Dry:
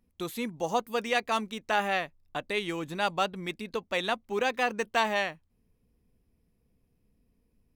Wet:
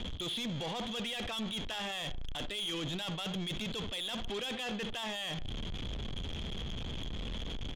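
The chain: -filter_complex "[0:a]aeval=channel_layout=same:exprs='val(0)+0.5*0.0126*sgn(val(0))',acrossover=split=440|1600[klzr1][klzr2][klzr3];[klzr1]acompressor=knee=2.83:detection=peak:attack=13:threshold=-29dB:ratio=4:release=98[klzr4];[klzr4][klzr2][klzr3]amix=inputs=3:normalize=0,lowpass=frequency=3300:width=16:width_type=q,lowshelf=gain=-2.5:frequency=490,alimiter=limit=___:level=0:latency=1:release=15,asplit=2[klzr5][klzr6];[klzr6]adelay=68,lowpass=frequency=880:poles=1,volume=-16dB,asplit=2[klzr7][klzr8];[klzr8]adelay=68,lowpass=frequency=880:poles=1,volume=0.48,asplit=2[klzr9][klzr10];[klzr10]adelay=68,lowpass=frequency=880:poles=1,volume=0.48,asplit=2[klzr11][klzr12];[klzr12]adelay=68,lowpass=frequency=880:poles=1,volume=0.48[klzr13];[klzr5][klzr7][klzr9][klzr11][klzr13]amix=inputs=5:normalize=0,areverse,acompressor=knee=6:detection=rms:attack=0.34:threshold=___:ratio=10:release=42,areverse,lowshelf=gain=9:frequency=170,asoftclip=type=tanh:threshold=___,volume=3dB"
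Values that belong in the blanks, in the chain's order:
-9.5dB, -30dB, -36dB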